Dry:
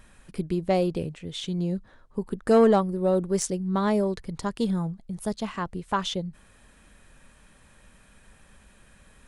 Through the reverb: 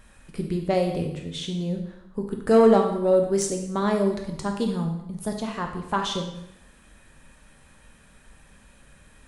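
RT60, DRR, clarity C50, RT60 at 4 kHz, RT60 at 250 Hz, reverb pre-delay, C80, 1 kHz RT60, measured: 0.80 s, 3.0 dB, 6.5 dB, 0.75 s, 0.75 s, 7 ms, 9.0 dB, 0.80 s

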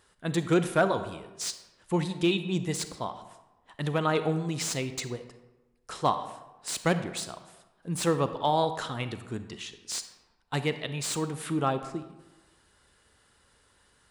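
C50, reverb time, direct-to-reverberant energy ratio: 11.0 dB, 1.1 s, 10.0 dB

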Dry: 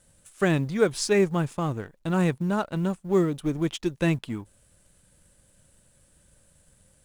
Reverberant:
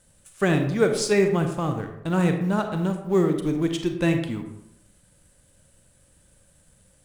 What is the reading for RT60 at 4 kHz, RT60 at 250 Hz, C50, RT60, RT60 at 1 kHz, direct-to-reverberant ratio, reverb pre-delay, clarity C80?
0.45 s, 0.90 s, 7.0 dB, 0.80 s, 0.75 s, 5.5 dB, 34 ms, 10.0 dB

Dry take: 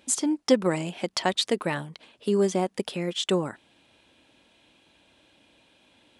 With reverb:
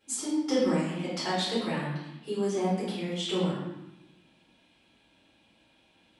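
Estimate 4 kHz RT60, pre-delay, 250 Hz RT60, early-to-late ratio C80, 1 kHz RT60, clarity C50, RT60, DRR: 0.75 s, 3 ms, 1.3 s, 3.5 dB, 0.90 s, 0.5 dB, 0.90 s, -12.5 dB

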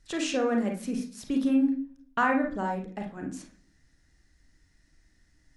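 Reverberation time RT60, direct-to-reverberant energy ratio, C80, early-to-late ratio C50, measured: 0.55 s, 1.5 dB, 14.0 dB, 7.0 dB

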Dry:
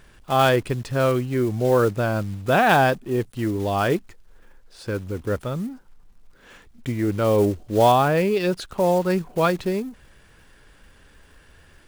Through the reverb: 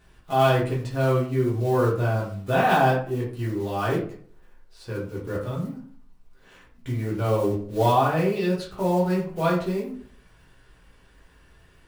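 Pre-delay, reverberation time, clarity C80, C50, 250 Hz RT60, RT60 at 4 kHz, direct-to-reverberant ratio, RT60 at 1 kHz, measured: 3 ms, 0.50 s, 10.0 dB, 6.0 dB, 0.60 s, 0.30 s, -6.5 dB, 0.45 s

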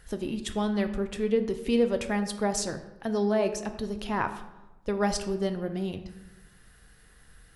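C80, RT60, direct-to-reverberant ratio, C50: 12.5 dB, 1.1 s, 7.0 dB, 10.5 dB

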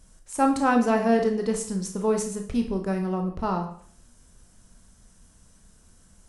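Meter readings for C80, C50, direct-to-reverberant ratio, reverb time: 12.5 dB, 8.0 dB, 3.5 dB, 0.60 s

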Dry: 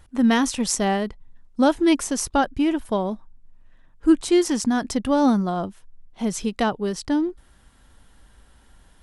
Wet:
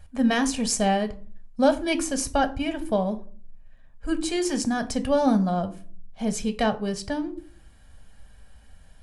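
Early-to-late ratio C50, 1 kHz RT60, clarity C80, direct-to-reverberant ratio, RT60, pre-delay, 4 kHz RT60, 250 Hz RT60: 16.5 dB, 0.40 s, 22.0 dB, 8.5 dB, 0.45 s, 5 ms, 0.25 s, 0.65 s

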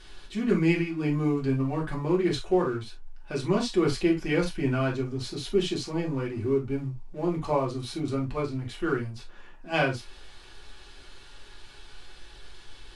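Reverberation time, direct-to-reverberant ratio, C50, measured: no single decay rate, -3.0 dB, 11.5 dB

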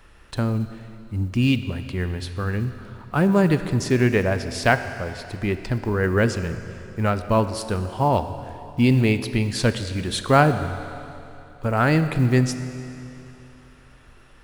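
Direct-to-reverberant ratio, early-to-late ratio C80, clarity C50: 10.0 dB, 11.5 dB, 10.5 dB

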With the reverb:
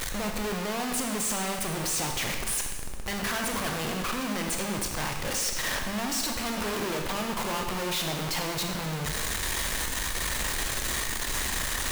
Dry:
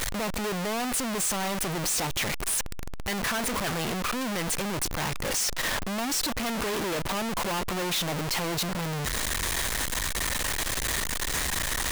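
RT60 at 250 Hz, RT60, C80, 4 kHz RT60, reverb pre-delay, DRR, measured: 1.2 s, 1.3 s, 6.0 dB, 1.2 s, 19 ms, 2.5 dB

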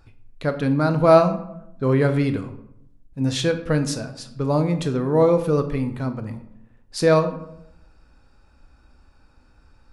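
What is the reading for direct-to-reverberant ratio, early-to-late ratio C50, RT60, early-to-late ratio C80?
8.0 dB, 11.5 dB, 0.75 s, 14.0 dB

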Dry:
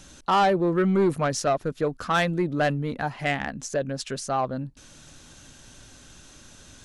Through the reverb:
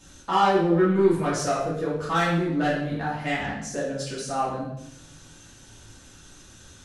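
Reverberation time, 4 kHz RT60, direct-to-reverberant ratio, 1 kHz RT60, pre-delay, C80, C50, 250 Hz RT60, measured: 0.75 s, 0.65 s, -8.5 dB, 0.70 s, 3 ms, 5.5 dB, 2.5 dB, 0.90 s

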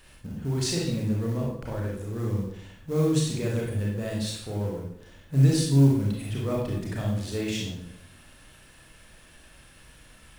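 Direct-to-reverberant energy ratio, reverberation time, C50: -3.0 dB, 0.70 s, 1.5 dB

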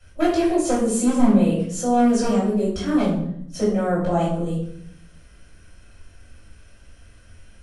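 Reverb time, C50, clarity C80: 0.70 s, 3.0 dB, 7.0 dB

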